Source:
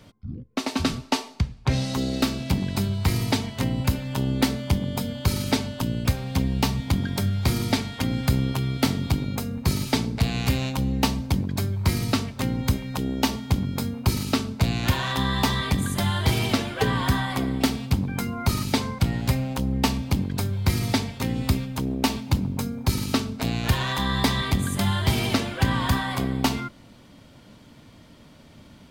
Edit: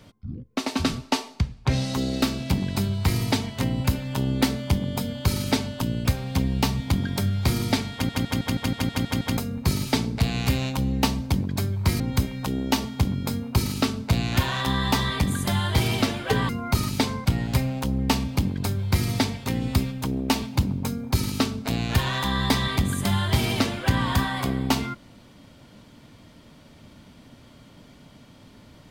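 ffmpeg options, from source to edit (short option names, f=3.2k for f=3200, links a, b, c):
-filter_complex "[0:a]asplit=12[a][b][c][d][e][f][g][h][i][j][k][l];[a]atrim=end=8.092[m];[b]atrim=start=7.928:end=8.092[n];[c]atrim=start=7.928:end=8.092[o];[d]atrim=start=7.928:end=8.092[p];[e]atrim=start=7.928:end=8.092[q];[f]atrim=start=7.928:end=8.092[r];[g]atrim=start=7.928:end=8.092[s];[h]atrim=start=7.928:end=8.092[t];[i]atrim=start=7.928:end=8.092[u];[j]atrim=start=9.368:end=12.002[v];[k]atrim=start=12.508:end=17.002[w];[l]atrim=start=18.228[x];[m][n]acrossfade=d=0.004:c1=hsin:c2=hsin[y];[y][o]acrossfade=d=0.004:c1=hsin:c2=hsin[z];[z][p]acrossfade=d=0.004:c1=hsin:c2=hsin[aa];[aa][q]acrossfade=d=0.004:c1=hsin:c2=hsin[ab];[ab][r]acrossfade=d=0.004:c1=hsin:c2=hsin[ac];[ac][s]acrossfade=d=0.004:c1=hsin:c2=hsin[ad];[ad][t]acrossfade=d=0.004:c1=hsin:c2=hsin[ae];[ae][u]acrossfade=d=0.004:c1=hsin:c2=hsin[af];[af][v]acrossfade=d=0.004:c1=hsin:c2=hsin[ag];[ag][w]acrossfade=d=0.004:c1=hsin:c2=hsin[ah];[ah][x]acrossfade=d=0.004:c1=hsin:c2=hsin"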